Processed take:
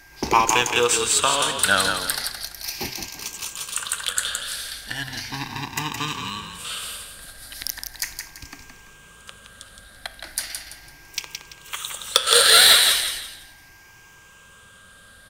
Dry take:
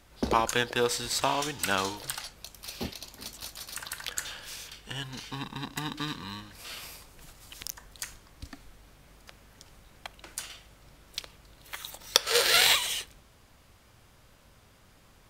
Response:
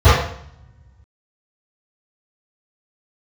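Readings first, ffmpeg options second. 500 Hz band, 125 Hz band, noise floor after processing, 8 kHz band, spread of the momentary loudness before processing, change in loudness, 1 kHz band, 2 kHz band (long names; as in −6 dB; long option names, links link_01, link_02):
+6.0 dB, +4.0 dB, −49 dBFS, +11.5 dB, 21 LU, +9.5 dB, +8.5 dB, +9.0 dB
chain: -filter_complex "[0:a]afftfilt=real='re*pow(10,10/40*sin(2*PI*(0.74*log(max(b,1)*sr/1024/100)/log(2)-(0.37)*(pts-256)/sr)))':imag='im*pow(10,10/40*sin(2*PI*(0.74*log(max(b,1)*sr/1024/100)/log(2)-(0.37)*(pts-256)/sr)))':win_size=1024:overlap=0.75,equalizer=frequency=9300:width=4.1:gain=4.5,bandreject=frequency=129.3:width_type=h:width=4,bandreject=frequency=258.6:width_type=h:width=4,bandreject=frequency=387.9:width_type=h:width=4,bandreject=frequency=517.2:width_type=h:width=4,bandreject=frequency=646.5:width_type=h:width=4,bandreject=frequency=775.8:width_type=h:width=4,bandreject=frequency=905.1:width_type=h:width=4,bandreject=frequency=1034.4:width_type=h:width=4,bandreject=frequency=1163.7:width_type=h:width=4,bandreject=frequency=1293:width_type=h:width=4,bandreject=frequency=1422.3:width_type=h:width=4,bandreject=frequency=1551.6:width_type=h:width=4,bandreject=frequency=1680.9:width_type=h:width=4,bandreject=frequency=1810.2:width_type=h:width=4,bandreject=frequency=1939.5:width_type=h:width=4,bandreject=frequency=2068.8:width_type=h:width=4,bandreject=frequency=2198.1:width_type=h:width=4,bandreject=frequency=2327.4:width_type=h:width=4,bandreject=frequency=2456.7:width_type=h:width=4,bandreject=frequency=2586:width_type=h:width=4,bandreject=frequency=2715.3:width_type=h:width=4,bandreject=frequency=2844.6:width_type=h:width=4,bandreject=frequency=2973.9:width_type=h:width=4,bandreject=frequency=3103.2:width_type=h:width=4,bandreject=frequency=3232.5:width_type=h:width=4,bandreject=frequency=3361.8:width_type=h:width=4,bandreject=frequency=3491.1:width_type=h:width=4,asplit=2[link_01][link_02];[link_02]asplit=4[link_03][link_04][link_05][link_06];[link_03]adelay=168,afreqshift=-31,volume=-6.5dB[link_07];[link_04]adelay=336,afreqshift=-62,volume=-16.4dB[link_08];[link_05]adelay=504,afreqshift=-93,volume=-26.3dB[link_09];[link_06]adelay=672,afreqshift=-124,volume=-36.2dB[link_10];[link_07][link_08][link_09][link_10]amix=inputs=4:normalize=0[link_11];[link_01][link_11]amix=inputs=2:normalize=0,aeval=exprs='val(0)+0.00126*sin(2*PI*1600*n/s)':channel_layout=same,apsyclip=4.5dB,acrossover=split=1000[link_12][link_13];[link_13]acontrast=67[link_14];[link_12][link_14]amix=inputs=2:normalize=0,volume=-2.5dB"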